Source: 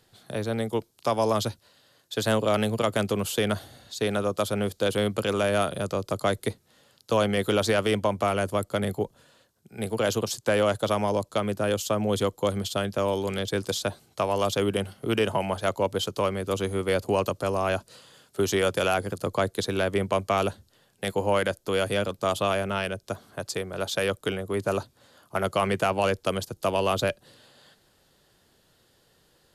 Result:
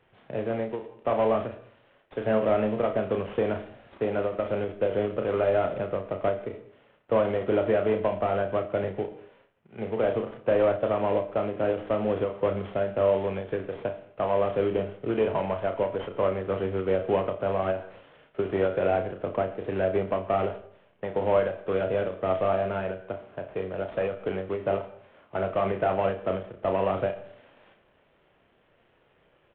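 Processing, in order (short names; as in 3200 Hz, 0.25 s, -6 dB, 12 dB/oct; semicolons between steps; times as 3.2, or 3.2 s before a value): CVSD 16 kbps; bell 540 Hz +6 dB 1.4 oct; doubler 32 ms -6.5 dB; reverb RT60 0.60 s, pre-delay 4 ms, DRR 10.5 dB; ending taper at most 140 dB/s; gain -4 dB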